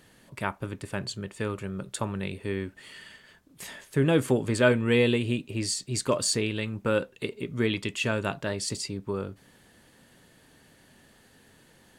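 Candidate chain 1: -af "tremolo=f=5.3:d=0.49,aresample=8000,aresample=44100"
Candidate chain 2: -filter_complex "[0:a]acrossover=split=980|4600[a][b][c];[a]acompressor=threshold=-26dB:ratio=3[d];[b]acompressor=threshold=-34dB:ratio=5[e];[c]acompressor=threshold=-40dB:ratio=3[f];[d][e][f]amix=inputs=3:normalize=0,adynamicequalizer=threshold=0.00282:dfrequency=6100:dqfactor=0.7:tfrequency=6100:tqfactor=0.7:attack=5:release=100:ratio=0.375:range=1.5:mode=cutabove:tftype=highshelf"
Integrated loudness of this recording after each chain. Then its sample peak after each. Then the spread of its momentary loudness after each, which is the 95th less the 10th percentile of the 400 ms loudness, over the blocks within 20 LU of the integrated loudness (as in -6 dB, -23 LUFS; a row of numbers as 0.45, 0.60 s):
-31.0, -32.0 LUFS; -10.5, -15.0 dBFS; 16, 14 LU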